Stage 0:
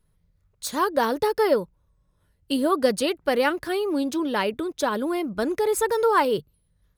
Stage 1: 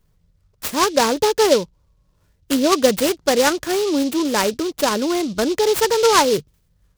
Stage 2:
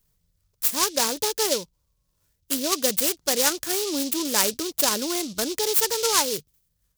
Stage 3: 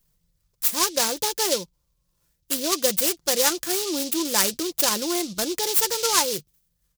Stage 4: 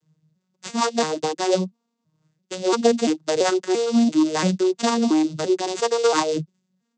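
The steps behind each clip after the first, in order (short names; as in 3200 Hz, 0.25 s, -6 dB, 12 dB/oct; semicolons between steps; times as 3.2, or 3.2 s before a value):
noise-modulated delay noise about 4200 Hz, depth 0.076 ms; gain +5.5 dB
vocal rider 2 s; pre-emphasis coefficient 0.8; gain +3.5 dB
comb 5.8 ms, depth 40%
arpeggiated vocoder minor triad, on D#3, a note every 0.34 s; gain +5.5 dB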